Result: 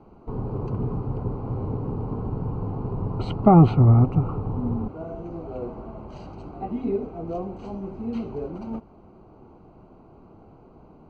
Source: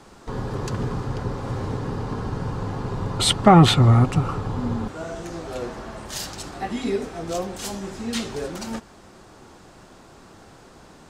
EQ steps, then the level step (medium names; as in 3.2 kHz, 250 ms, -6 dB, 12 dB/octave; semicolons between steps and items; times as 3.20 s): boxcar filter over 25 samples; distance through air 150 m; band-stop 540 Hz, Q 15; 0.0 dB